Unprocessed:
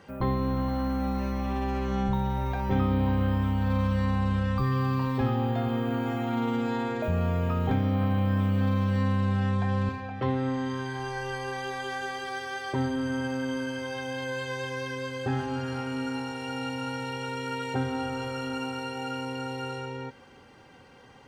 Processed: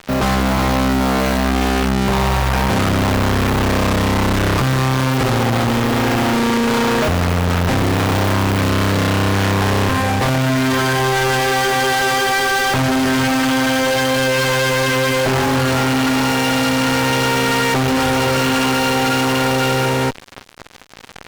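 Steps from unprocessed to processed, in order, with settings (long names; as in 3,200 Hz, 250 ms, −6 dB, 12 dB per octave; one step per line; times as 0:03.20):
harmonic generator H 4 −7 dB, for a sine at −13.5 dBFS
noise that follows the level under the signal 34 dB
fuzz pedal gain 46 dB, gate −47 dBFS
level −1.5 dB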